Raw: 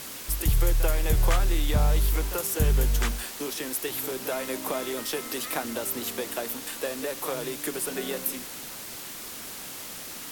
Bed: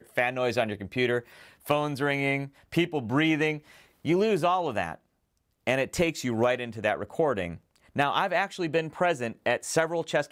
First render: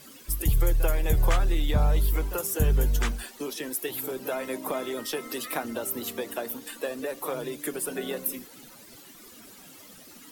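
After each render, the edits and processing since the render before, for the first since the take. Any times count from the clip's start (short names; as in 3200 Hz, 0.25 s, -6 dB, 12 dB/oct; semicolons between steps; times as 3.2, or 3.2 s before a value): denoiser 14 dB, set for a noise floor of -39 dBFS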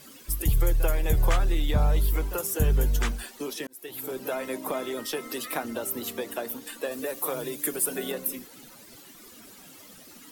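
3.67–4.15 fade in; 6.91–8.12 high shelf 8300 Hz +10.5 dB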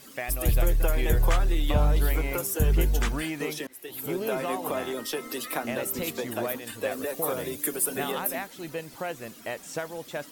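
add bed -8.5 dB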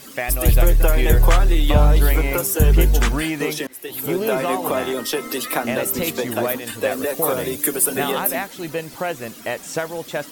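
gain +8.5 dB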